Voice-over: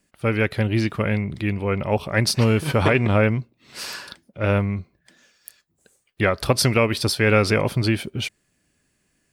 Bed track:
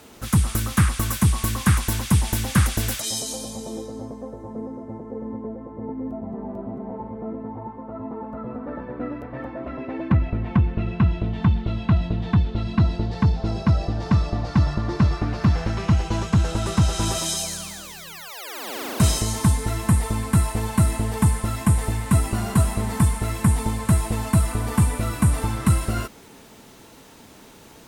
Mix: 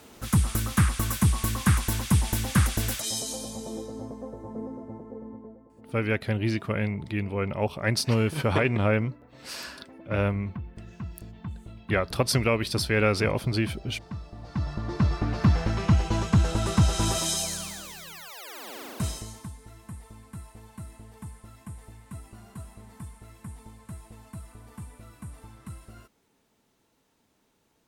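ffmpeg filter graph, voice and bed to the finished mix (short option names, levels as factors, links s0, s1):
-filter_complex "[0:a]adelay=5700,volume=0.531[s0];[1:a]volume=4.47,afade=t=out:st=4.7:d=0.97:silence=0.177828,afade=t=in:st=14.35:d=1.04:silence=0.149624,afade=t=out:st=17.64:d=1.86:silence=0.0891251[s1];[s0][s1]amix=inputs=2:normalize=0"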